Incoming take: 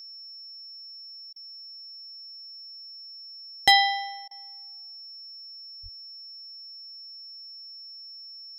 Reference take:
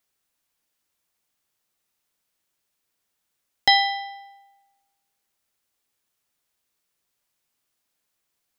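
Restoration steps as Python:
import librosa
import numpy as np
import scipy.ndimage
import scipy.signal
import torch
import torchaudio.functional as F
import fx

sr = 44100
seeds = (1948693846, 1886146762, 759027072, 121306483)

y = fx.fix_declip(x, sr, threshold_db=-7.5)
y = fx.notch(y, sr, hz=5400.0, q=30.0)
y = fx.highpass(y, sr, hz=140.0, slope=24, at=(5.82, 5.94), fade=0.02)
y = fx.fix_interpolate(y, sr, at_s=(1.33, 4.28), length_ms=29.0)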